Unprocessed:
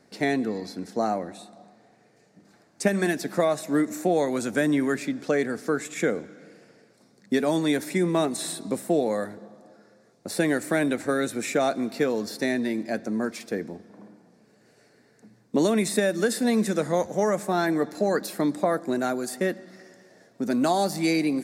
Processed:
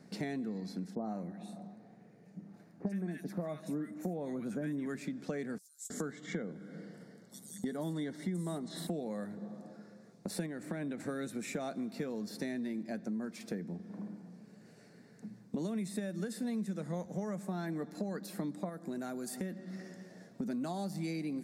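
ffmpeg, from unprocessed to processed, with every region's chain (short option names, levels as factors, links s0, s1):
-filter_complex "[0:a]asettb=1/sr,asplit=3[s0][s1][s2];[s0]atrim=end=0.954[s3];[s1]atrim=start=0.95:end=4.86,asetpts=PTS-STARTPTS,afade=t=in:d=0.004:c=qsin,afade=t=out:st=3.906:d=0.004:c=qsin,equalizer=f=6400:t=o:w=2.5:g=-6.5,bandreject=f=7700:w=9.3,acrossover=split=1300|4300[s4][s5][s6];[s5]adelay=60[s7];[s6]adelay=90[s8];[s4][s7][s8]amix=inputs=3:normalize=0,atrim=end_sample=172431[s9];[s2]atrim=start=4.856[s10];[s3][s9]acrossfade=d=0.004:c1=hsin:c2=qsin[s11];[s11][s10]acrossfade=d=0.004:c1=qsin:c2=hsin,asettb=1/sr,asplit=3[s12][s13][s14];[s12]atrim=end=5.584[s15];[s13]atrim=start=5.58:end=8.87,asetpts=PTS-STARTPTS,afade=t=in:d=0.004:c=qsin,afade=t=out:st=3.286:d=0.004:c=qsin,asuperstop=centerf=2500:order=8:qfactor=4.5,acrossover=split=5900[s16][s17];[s16]adelay=320[s18];[s18][s17]amix=inputs=2:normalize=0,atrim=end_sample=145089[s19];[s14]atrim=start=8.866[s20];[s15][s19]acrossfade=d=0.004:c1=hsin:c2=qsin[s21];[s21][s20]acrossfade=d=0.004:c1=qsin:c2=hsin,asettb=1/sr,asplit=3[s22][s23][s24];[s22]atrim=end=10.464[s25];[s23]atrim=start=10.46:end=11,asetpts=PTS-STARTPTS,afade=t=in:d=0.004:c=qsin,afade=t=out:st=0.536:d=0.004:c=qsin,acompressor=threshold=0.0501:ratio=2.5:attack=3.2:release=140:knee=1:detection=peak,lowpass=f=3300:p=1[s26];[s24]atrim=start=10.996[s27];[s25][s26]acrossfade=d=0.004:c1=hsin:c2=qsin[s28];[s28][s27]acrossfade=d=0.004:c1=qsin:c2=hsin,asettb=1/sr,asplit=3[s29][s30][s31];[s29]atrim=end=18.694[s32];[s30]atrim=start=18.69:end=19.52,asetpts=PTS-STARTPTS,afade=t=in:d=0.004:c=qsin,afade=t=out:st=0.826:d=0.004:c=qsin,highshelf=f=7800:g=6,acompressor=threshold=0.0158:ratio=1.5:attack=3.2:release=140:knee=1:detection=peak[s33];[s31]atrim=start=19.516[s34];[s32][s33]acrossfade=d=0.004:c1=hsin:c2=qsin[s35];[s35][s34]acrossfade=d=0.004:c1=qsin:c2=hsin,equalizer=f=180:t=o:w=0.77:g=13.5,acompressor=threshold=0.0178:ratio=4,volume=0.708"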